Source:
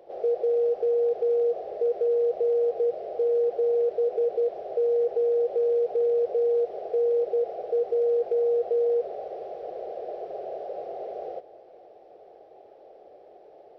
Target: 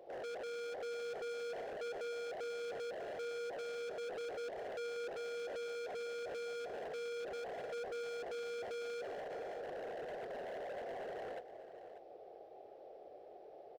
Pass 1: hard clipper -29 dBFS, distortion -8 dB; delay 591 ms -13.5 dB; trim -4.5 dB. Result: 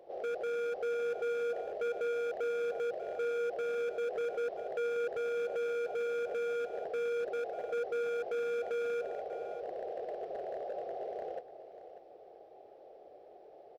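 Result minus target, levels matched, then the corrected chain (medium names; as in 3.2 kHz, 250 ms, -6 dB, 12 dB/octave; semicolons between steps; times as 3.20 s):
hard clipper: distortion -5 dB
hard clipper -38 dBFS, distortion -3 dB; delay 591 ms -13.5 dB; trim -4.5 dB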